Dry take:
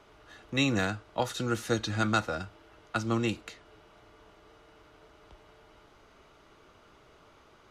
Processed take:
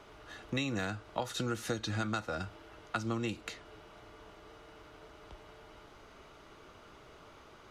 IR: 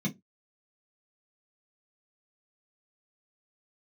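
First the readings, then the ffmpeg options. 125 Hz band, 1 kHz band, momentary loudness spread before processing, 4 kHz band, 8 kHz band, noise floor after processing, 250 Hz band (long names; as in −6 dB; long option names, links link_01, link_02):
−5.0 dB, −5.5 dB, 10 LU, −5.5 dB, −4.5 dB, −56 dBFS, −6.0 dB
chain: -af "acompressor=threshold=-34dB:ratio=10,volume=3dB"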